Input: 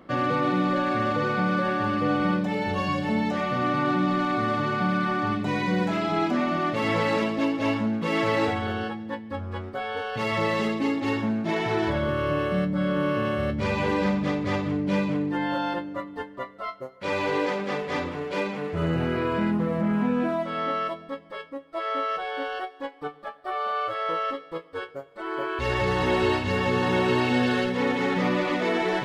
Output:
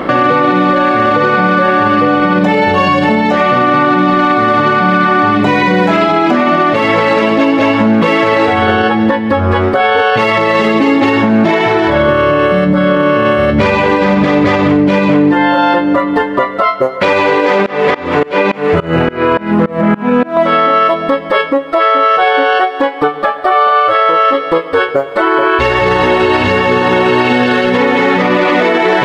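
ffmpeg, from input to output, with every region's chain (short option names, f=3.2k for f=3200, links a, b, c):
-filter_complex "[0:a]asettb=1/sr,asplit=3[a][b][c];[a]atrim=end=17.664[d];[b]atrim=start=17.66:end=20.37,asetpts=PTS-STARTPTS,afade=t=in:d=0.004:c=qsin,afade=t=out:st=2.706:d=0.004:c=qsin,acrossover=split=3900[e][f];[f]acompressor=threshold=-52dB:ratio=4:attack=1:release=60[g];[e][g]amix=inputs=2:normalize=0,aeval=exprs='val(0)*pow(10,-26*if(lt(mod(-3.5*n/s,1),2*abs(-3.5)/1000),1-mod(-3.5*n/s,1)/(2*abs(-3.5)/1000),(mod(-3.5*n/s,1)-2*abs(-3.5)/1000)/(1-2*abs(-3.5)/1000))/20)':c=same[h];[c]atrim=start=20.366[i];[d][h]acrossfade=d=0.004:c1=hsin:c2=qsin[j];[j][i]acrossfade=d=0.004:c1=qsin:c2=hsin,bass=f=250:g=-8,treble=f=4k:g=-8,acompressor=threshold=-38dB:ratio=6,alimiter=level_in=34.5dB:limit=-1dB:release=50:level=0:latency=1,volume=-1dB"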